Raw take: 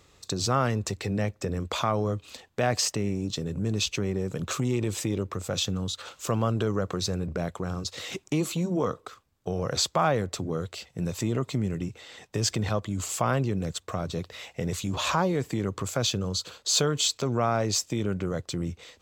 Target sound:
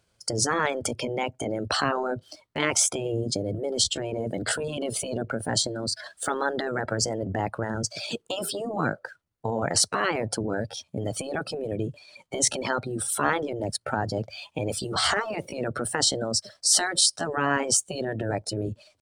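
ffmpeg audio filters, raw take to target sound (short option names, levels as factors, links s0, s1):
-af "afftdn=nr=17:nf=-39,afftfilt=real='re*lt(hypot(re,im),0.224)':imag='im*lt(hypot(re,im),0.224)':win_size=1024:overlap=0.75,asetrate=53981,aresample=44100,atempo=0.816958,volume=2"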